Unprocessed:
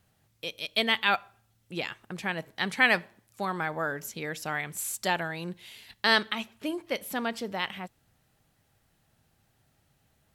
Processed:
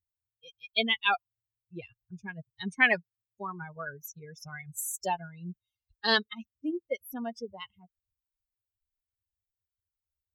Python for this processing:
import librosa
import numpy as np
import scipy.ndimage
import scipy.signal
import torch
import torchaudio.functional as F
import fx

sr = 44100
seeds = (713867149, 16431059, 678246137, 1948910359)

y = fx.bin_expand(x, sr, power=3.0)
y = fx.dynamic_eq(y, sr, hz=1300.0, q=5.2, threshold_db=-50.0, ratio=4.0, max_db=-5)
y = F.gain(torch.from_numpy(y), 3.5).numpy()